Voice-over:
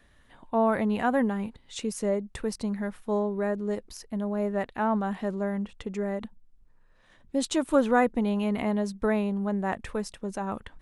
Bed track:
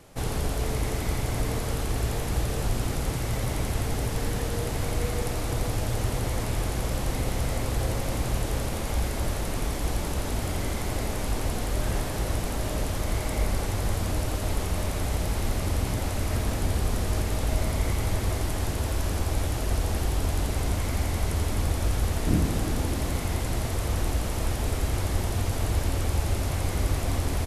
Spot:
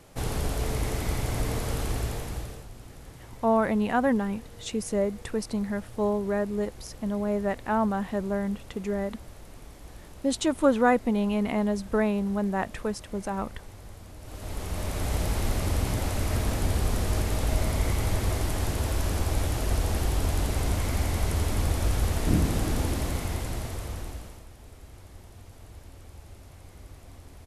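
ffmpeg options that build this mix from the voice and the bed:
ffmpeg -i stem1.wav -i stem2.wav -filter_complex "[0:a]adelay=2900,volume=1dB[link_01];[1:a]volume=17dB,afade=type=out:start_time=1.87:duration=0.79:silence=0.141254,afade=type=in:start_time=14.2:duration=0.98:silence=0.125893,afade=type=out:start_time=22.83:duration=1.62:silence=0.0891251[link_02];[link_01][link_02]amix=inputs=2:normalize=0" out.wav

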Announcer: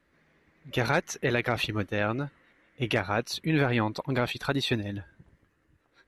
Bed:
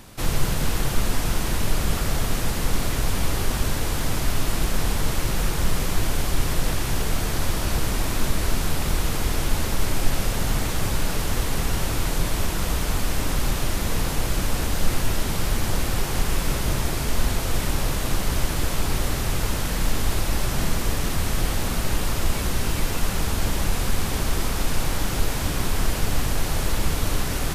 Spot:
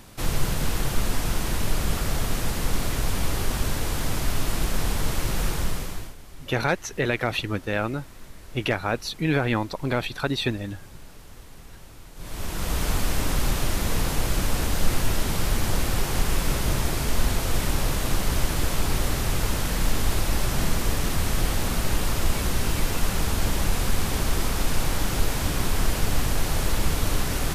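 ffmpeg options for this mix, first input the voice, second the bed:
ffmpeg -i stem1.wav -i stem2.wav -filter_complex "[0:a]adelay=5750,volume=2dB[link_01];[1:a]volume=19dB,afade=type=out:start_time=5.51:duration=0.64:silence=0.105925,afade=type=in:start_time=12.15:duration=0.7:silence=0.0891251[link_02];[link_01][link_02]amix=inputs=2:normalize=0" out.wav

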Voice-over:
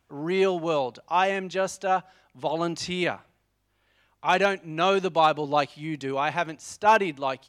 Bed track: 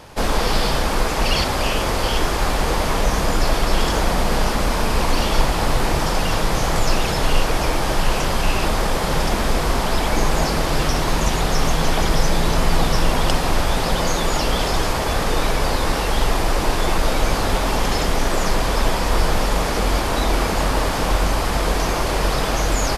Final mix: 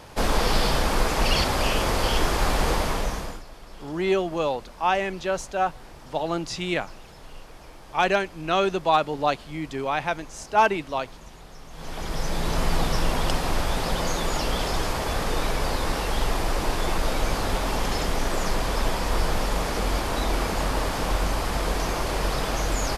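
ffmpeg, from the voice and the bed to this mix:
ffmpeg -i stem1.wav -i stem2.wav -filter_complex "[0:a]adelay=3700,volume=0dB[link_01];[1:a]volume=17dB,afade=type=out:start_time=2.69:duration=0.74:silence=0.0707946,afade=type=in:start_time=11.7:duration=0.92:silence=0.1[link_02];[link_01][link_02]amix=inputs=2:normalize=0" out.wav

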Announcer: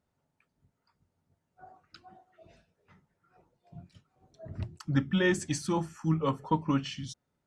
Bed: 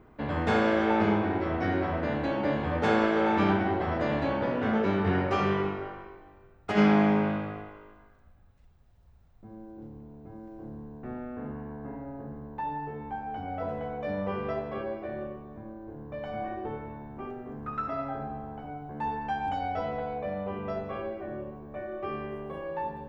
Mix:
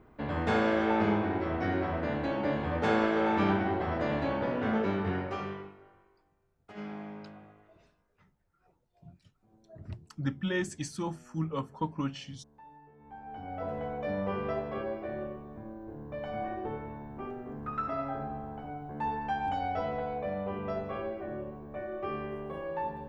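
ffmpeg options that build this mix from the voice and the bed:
ffmpeg -i stem1.wav -i stem2.wav -filter_complex "[0:a]adelay=5300,volume=-5dB[link_01];[1:a]volume=16.5dB,afade=type=out:start_time=4.76:duration=0.97:silence=0.133352,afade=type=in:start_time=12.97:duration=0.87:silence=0.112202[link_02];[link_01][link_02]amix=inputs=2:normalize=0" out.wav

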